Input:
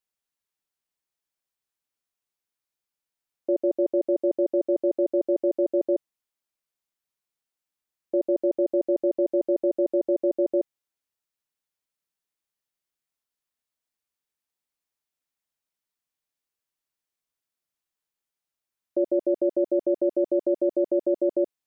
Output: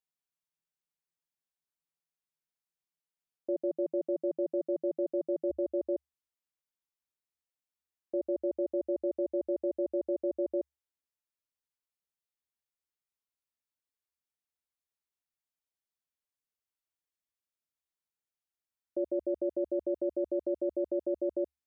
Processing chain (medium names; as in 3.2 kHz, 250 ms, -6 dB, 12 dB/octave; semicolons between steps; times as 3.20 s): peaking EQ 160 Hz +12.5 dB 0.26 oct, from 5.50 s 71 Hz; trim -8.5 dB